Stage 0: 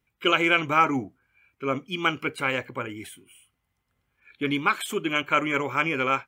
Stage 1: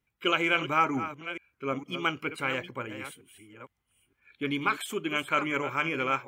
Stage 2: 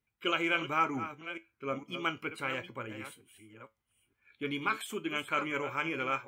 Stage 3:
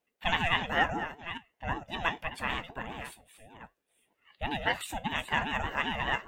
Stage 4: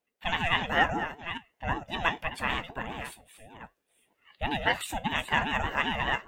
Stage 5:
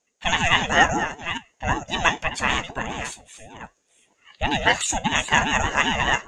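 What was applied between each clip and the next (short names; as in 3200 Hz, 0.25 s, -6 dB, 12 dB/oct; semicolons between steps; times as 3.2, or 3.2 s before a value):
reverse delay 0.459 s, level -11 dB; gain -4.5 dB
resonator 110 Hz, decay 0.19 s, harmonics all, mix 60%
ring modulator with a swept carrier 460 Hz, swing 30%, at 5.1 Hz; gain +5 dB
AGC gain up to 5 dB; gain -2 dB
synth low-pass 6700 Hz, resonance Q 9.6; gain +7 dB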